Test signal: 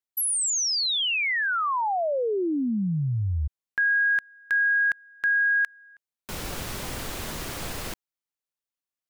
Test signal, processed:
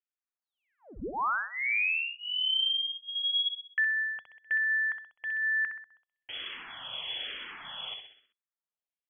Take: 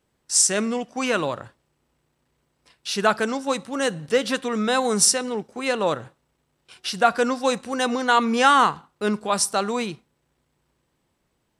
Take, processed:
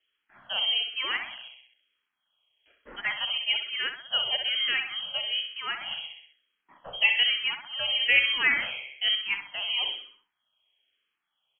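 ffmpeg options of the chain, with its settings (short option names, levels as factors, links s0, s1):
-filter_complex "[0:a]lowpass=f=2900:t=q:w=0.5098,lowpass=f=2900:t=q:w=0.6013,lowpass=f=2900:t=q:w=0.9,lowpass=f=2900:t=q:w=2.563,afreqshift=-3400,aecho=1:1:64|128|192|256|320|384:0.447|0.223|0.112|0.0558|0.0279|0.014,asplit=2[s0][s1];[s1]afreqshift=-1.1[s2];[s0][s2]amix=inputs=2:normalize=1,volume=0.708"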